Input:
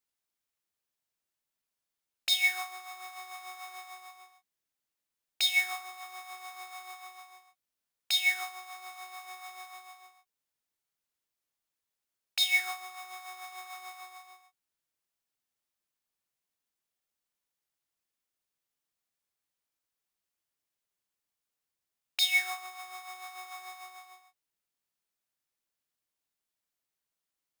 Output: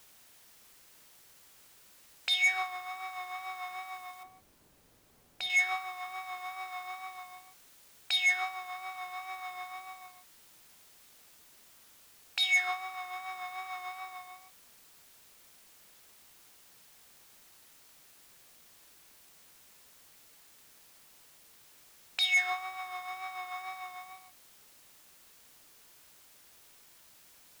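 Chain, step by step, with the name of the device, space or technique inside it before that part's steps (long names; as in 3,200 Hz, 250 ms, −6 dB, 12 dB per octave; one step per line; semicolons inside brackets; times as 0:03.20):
tape answering machine (band-pass filter 390–3,000 Hz; soft clipping −26 dBFS, distortion −12 dB; tape wow and flutter 22 cents; white noise bed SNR 20 dB)
0:04.23–0:05.50: tilt shelving filter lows +8.5 dB, about 820 Hz
level +5.5 dB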